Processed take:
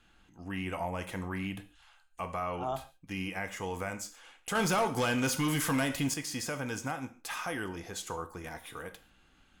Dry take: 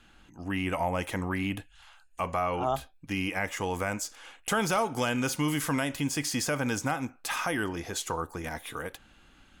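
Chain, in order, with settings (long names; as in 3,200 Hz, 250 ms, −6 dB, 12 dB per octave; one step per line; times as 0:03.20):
reverb whose tail is shaped and stops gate 170 ms falling, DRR 8.5 dB
0:04.55–0:06.14: leveller curve on the samples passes 2
level −6.5 dB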